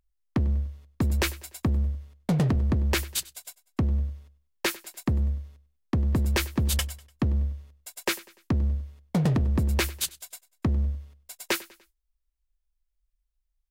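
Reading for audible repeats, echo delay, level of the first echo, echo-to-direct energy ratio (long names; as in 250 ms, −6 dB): 3, 98 ms, −20.5 dB, −19.5 dB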